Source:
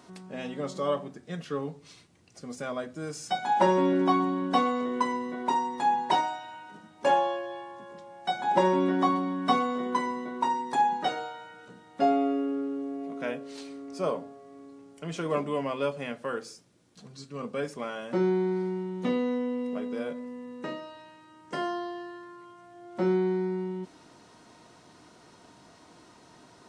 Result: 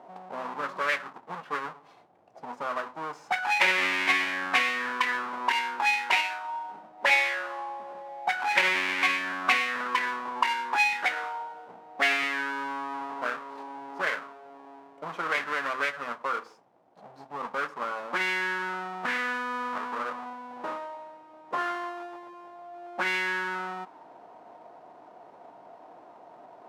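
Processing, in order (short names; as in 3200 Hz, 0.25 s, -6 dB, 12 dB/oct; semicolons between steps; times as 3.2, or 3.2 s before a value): half-waves squared off; auto-wah 700–2200 Hz, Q 3.3, up, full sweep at -19 dBFS; gain +8.5 dB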